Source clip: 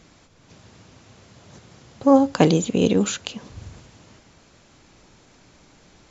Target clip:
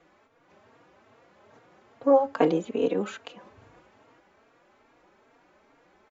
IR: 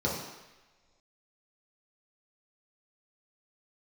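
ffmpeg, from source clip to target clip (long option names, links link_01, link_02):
-filter_complex "[0:a]acrossover=split=300 2300:gain=0.126 1 0.112[link_01][link_02][link_03];[link_01][link_02][link_03]amix=inputs=3:normalize=0,asplit=2[link_04][link_05];[link_05]adelay=3.7,afreqshift=2.4[link_06];[link_04][link_06]amix=inputs=2:normalize=1"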